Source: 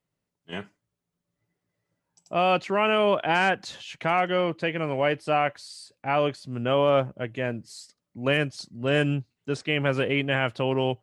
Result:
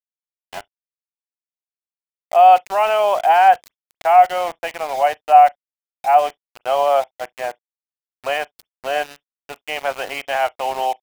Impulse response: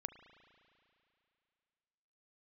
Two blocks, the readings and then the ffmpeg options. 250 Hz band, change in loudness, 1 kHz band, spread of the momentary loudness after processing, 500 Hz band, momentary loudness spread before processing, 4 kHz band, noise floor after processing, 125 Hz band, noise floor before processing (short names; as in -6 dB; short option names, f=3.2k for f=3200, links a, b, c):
under -10 dB, +8.5 dB, +14.0 dB, 19 LU, +5.0 dB, 16 LU, +0.5 dB, under -85 dBFS, under -20 dB, -84 dBFS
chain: -filter_complex "[0:a]highpass=f=740:t=q:w=7.5,aeval=exprs='val(0)*gte(abs(val(0)),0.0376)':c=same,asplit=2[a][b];[1:a]atrim=start_sample=2205,atrim=end_sample=3087[c];[b][c]afir=irnorm=-1:irlink=0,volume=1dB[d];[a][d]amix=inputs=2:normalize=0,volume=-5dB"